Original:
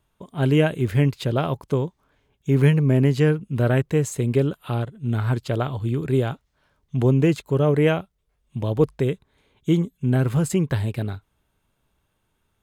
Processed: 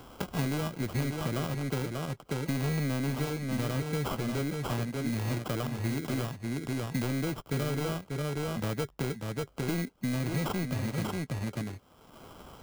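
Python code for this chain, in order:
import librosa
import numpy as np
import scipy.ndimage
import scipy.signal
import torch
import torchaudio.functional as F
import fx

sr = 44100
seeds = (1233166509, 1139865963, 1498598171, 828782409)

p1 = scipy.signal.sosfilt(scipy.signal.butter(2, 43.0, 'highpass', fs=sr, output='sos'), x)
p2 = F.preemphasis(torch.from_numpy(p1), 0.8).numpy()
p3 = fx.notch(p2, sr, hz=400.0, q=12.0)
p4 = fx.dynamic_eq(p3, sr, hz=200.0, q=0.96, threshold_db=-46.0, ratio=4.0, max_db=6)
p5 = fx.level_steps(p4, sr, step_db=18)
p6 = p4 + (p5 * librosa.db_to_amplitude(-1.5))
p7 = fx.sample_hold(p6, sr, seeds[0], rate_hz=1800.0, jitter_pct=0)
p8 = np.clip(p7, -10.0 ** (-25.0 / 20.0), 10.0 ** (-25.0 / 20.0))
p9 = fx.formant_shift(p8, sr, semitones=3)
p10 = p9 + fx.echo_single(p9, sr, ms=589, db=-6.5, dry=0)
p11 = fx.band_squash(p10, sr, depth_pct=100)
y = p11 * librosa.db_to_amplitude(-2.5)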